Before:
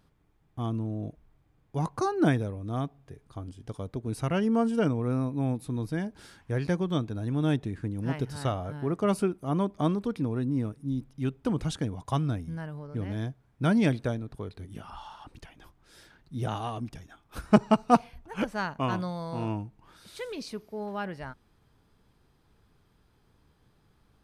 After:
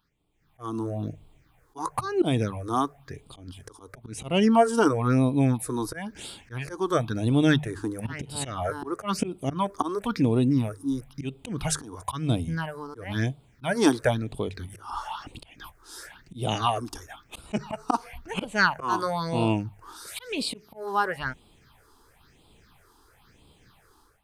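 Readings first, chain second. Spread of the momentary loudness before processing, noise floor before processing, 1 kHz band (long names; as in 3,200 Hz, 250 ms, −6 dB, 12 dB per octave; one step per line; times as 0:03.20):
17 LU, −67 dBFS, +4.5 dB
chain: volume swells 216 ms
low-shelf EQ 430 Hz −11.5 dB
all-pass phaser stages 6, 0.99 Hz, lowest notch 150–1,700 Hz
automatic gain control gain up to 16 dB
mains-hum notches 50/100/150 Hz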